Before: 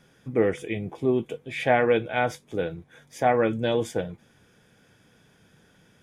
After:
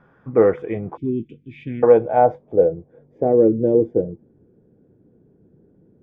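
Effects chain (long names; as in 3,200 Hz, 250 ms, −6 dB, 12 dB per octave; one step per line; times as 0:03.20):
0:00.97–0:01.83: elliptic band-stop filter 310–2,600 Hz, stop band 50 dB
dynamic equaliser 490 Hz, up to +5 dB, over −36 dBFS, Q 2
low-pass filter sweep 1,200 Hz → 370 Hz, 0:01.53–0:03.36
level +3 dB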